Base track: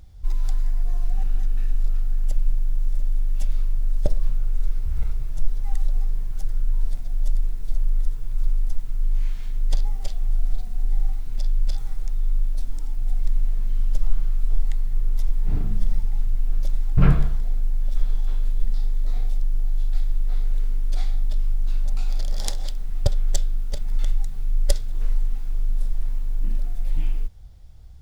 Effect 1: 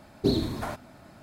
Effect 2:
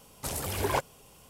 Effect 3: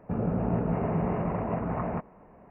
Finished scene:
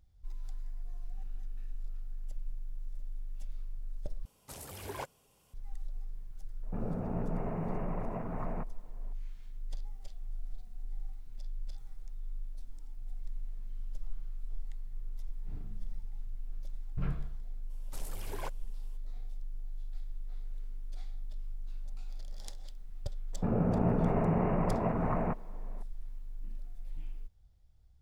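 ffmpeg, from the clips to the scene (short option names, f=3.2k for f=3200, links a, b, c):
-filter_complex "[2:a]asplit=2[a][b];[3:a]asplit=2[c][d];[0:a]volume=-18.5dB[e];[a]acompressor=mode=upward:threshold=-57dB:ratio=2.5:attack=3.2:release=140:knee=2.83:detection=peak[f];[e]asplit=2[g][h];[g]atrim=end=4.254[i];[f]atrim=end=1.29,asetpts=PTS-STARTPTS,volume=-12.5dB[j];[h]atrim=start=5.536[k];[c]atrim=end=2.5,asetpts=PTS-STARTPTS,volume=-8.5dB,afade=t=in:d=0.004:c=hsin,afade=t=out:st=2.496:d=0.004:c=hsin,adelay=6630[l];[b]atrim=end=1.29,asetpts=PTS-STARTPTS,volume=-14dB,afade=t=in:d=0.02,afade=t=out:st=1.27:d=0.02,adelay=17690[m];[d]atrim=end=2.5,asetpts=PTS-STARTPTS,volume=-1dB,afade=t=in:d=0.004:c=hsin,afade=t=out:st=2.496:d=0.004:c=hsin,adelay=23330[n];[i][j]acrossfade=d=0.004:c1=hsin:c2=hsin[o];[o][k]acrossfade=d=0.004:c1=hsin:c2=hsin[p];[p][l][m][n]amix=inputs=4:normalize=0"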